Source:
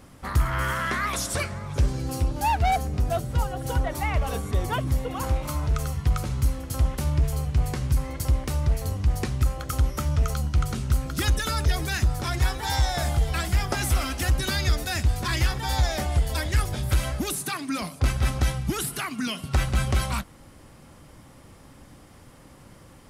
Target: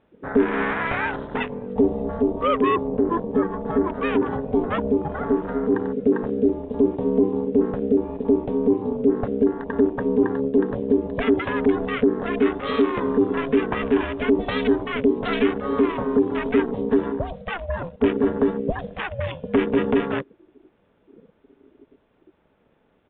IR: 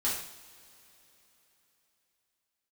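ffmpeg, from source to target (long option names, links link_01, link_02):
-af "afwtdn=0.0251,aeval=exprs='val(0)*sin(2*PI*340*n/s)':channel_layout=same,aresample=8000,aresample=44100,volume=5.5dB"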